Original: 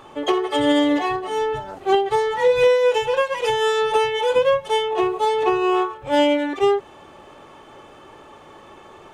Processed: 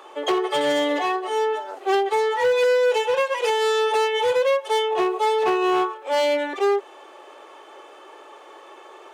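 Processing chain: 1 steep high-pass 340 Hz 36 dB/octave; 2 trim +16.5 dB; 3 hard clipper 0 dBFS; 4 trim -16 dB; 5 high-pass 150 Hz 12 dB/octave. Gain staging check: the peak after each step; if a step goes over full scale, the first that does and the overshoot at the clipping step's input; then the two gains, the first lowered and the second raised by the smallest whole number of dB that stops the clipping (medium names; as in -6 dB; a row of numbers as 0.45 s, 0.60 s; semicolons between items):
-7.0 dBFS, +9.5 dBFS, 0.0 dBFS, -16.0 dBFS, -11.5 dBFS; step 2, 9.5 dB; step 2 +6.5 dB, step 4 -6 dB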